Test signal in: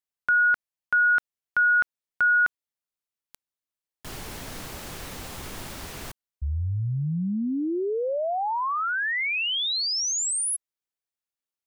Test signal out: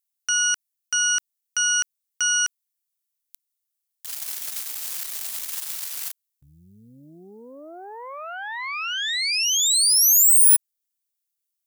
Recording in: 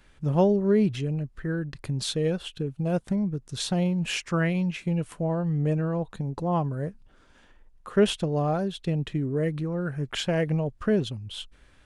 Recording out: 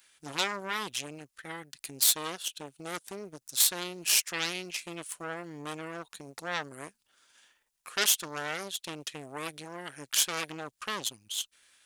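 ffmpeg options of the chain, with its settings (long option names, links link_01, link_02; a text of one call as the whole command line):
ffmpeg -i in.wav -af "aeval=exprs='0.316*(cos(1*acos(clip(val(0)/0.316,-1,1)))-cos(1*PI/2))+0.0224*(cos(5*acos(clip(val(0)/0.316,-1,1)))-cos(5*PI/2))+0.0501*(cos(6*acos(clip(val(0)/0.316,-1,1)))-cos(6*PI/2))+0.141*(cos(8*acos(clip(val(0)/0.316,-1,1)))-cos(8*PI/2))':channel_layout=same,aderivative,volume=5.5dB" out.wav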